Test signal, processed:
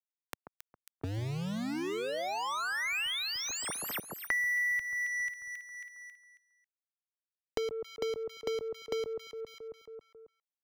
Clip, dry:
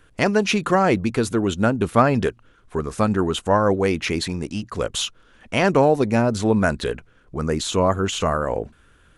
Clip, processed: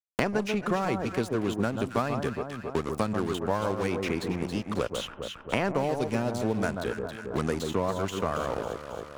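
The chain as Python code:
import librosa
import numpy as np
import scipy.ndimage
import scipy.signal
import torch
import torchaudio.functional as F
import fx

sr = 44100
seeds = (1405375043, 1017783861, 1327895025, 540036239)

y = np.sign(x) * np.maximum(np.abs(x) - 10.0 ** (-32.0 / 20.0), 0.0)
y = fx.echo_alternate(y, sr, ms=136, hz=1300.0, feedback_pct=51, wet_db=-6.0)
y = fx.band_squash(y, sr, depth_pct=100)
y = y * librosa.db_to_amplitude(-9.0)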